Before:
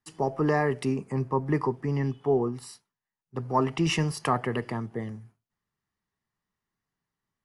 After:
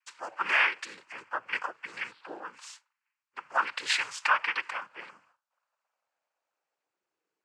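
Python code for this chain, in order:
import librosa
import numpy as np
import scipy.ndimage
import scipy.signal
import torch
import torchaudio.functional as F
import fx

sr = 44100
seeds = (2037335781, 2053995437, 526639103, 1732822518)

y = fx.filter_sweep_highpass(x, sr, from_hz=1500.0, to_hz=470.0, start_s=4.54, end_s=7.17, q=4.7)
y = fx.noise_vocoder(y, sr, seeds[0], bands=8)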